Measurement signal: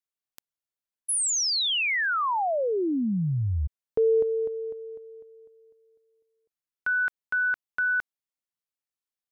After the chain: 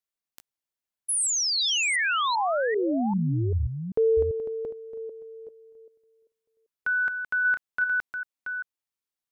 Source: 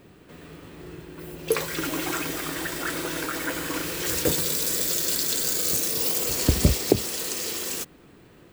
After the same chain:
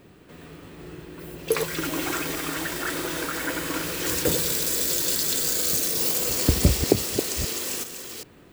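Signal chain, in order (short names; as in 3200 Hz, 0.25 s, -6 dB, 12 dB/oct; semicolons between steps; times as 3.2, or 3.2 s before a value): reverse delay 0.392 s, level -7 dB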